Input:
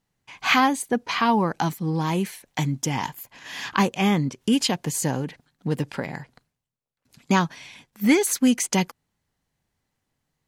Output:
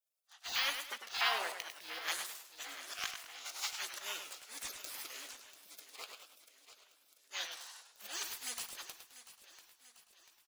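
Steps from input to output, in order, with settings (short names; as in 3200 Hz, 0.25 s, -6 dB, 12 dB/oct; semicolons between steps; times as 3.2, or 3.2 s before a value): in parallel at -4 dB: sample gate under -34.5 dBFS; 1.58–2.08 on the sum: band shelf 5500 Hz -8 dB; limiter -11 dBFS, peak gain reduction 8.5 dB; HPF 930 Hz 24 dB/oct; de-esser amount 70%; auto swell 0.14 s; doubler 18 ms -14 dB; feedback echo 0.69 s, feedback 54%, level -14.5 dB; spectral gate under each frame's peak -15 dB weak; warbling echo 0.103 s, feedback 37%, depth 140 cents, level -8 dB; gain +1 dB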